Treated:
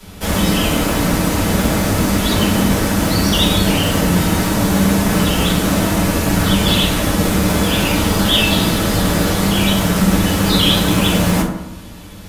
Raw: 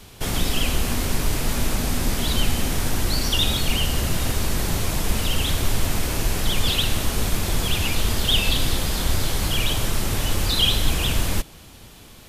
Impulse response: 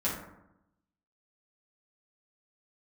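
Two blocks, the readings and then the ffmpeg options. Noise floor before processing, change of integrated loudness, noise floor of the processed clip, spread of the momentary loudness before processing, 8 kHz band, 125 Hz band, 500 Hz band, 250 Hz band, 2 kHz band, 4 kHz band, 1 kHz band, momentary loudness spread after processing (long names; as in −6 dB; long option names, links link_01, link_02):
−45 dBFS, +8.0 dB, −34 dBFS, 5 LU, +5.5 dB, +8.5 dB, +12.0 dB, +15.0 dB, +8.0 dB, +5.0 dB, +11.0 dB, 3 LU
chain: -filter_complex "[0:a]acrossover=split=150|4100[link_01][link_02][link_03];[link_01]aeval=exprs='(mod(15*val(0)+1,2)-1)/15':channel_layout=same[link_04];[link_04][link_02][link_03]amix=inputs=3:normalize=0[link_05];[1:a]atrim=start_sample=2205[link_06];[link_05][link_06]afir=irnorm=-1:irlink=0,volume=1dB"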